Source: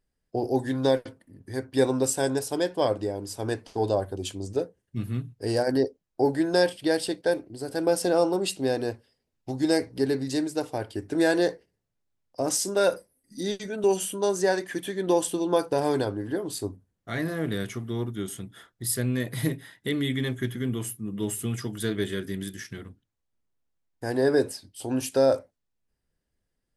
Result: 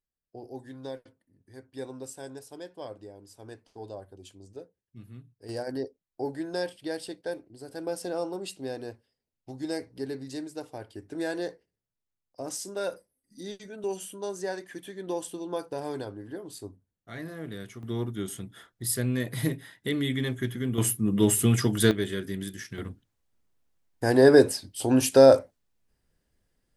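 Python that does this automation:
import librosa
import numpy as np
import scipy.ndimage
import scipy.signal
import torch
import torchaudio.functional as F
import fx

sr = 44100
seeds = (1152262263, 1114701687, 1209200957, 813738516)

y = fx.gain(x, sr, db=fx.steps((0.0, -16.0), (5.49, -9.5), (17.83, -1.0), (20.78, 8.0), (21.91, -1.0), (22.78, 6.0)))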